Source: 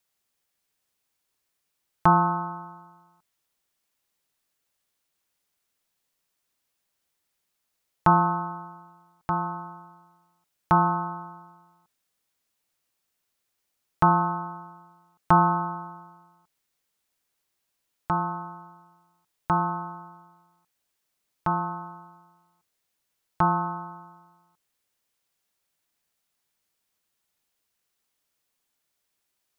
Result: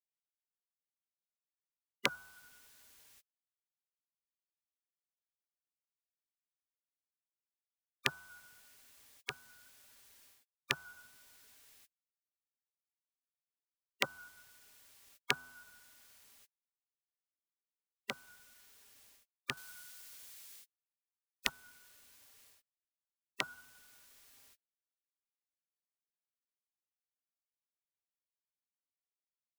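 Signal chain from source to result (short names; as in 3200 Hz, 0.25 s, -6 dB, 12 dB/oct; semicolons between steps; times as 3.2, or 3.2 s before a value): dynamic EQ 150 Hz, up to -3 dB, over -41 dBFS, Q 5; spectral gate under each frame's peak -30 dB weak; 19.57–21.49 high shelf 2000 Hz +9.5 dB; gain +16 dB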